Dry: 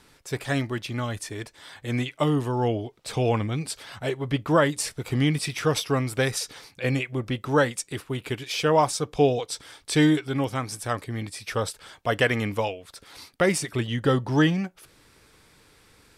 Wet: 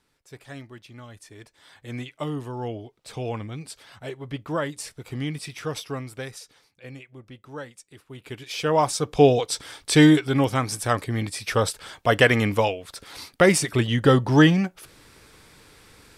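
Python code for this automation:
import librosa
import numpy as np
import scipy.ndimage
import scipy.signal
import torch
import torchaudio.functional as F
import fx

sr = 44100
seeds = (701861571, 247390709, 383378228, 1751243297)

y = fx.gain(x, sr, db=fx.line((1.08, -14.0), (1.73, -7.0), (5.9, -7.0), (6.69, -16.0), (7.95, -16.0), (8.41, -4.5), (9.27, 5.0)))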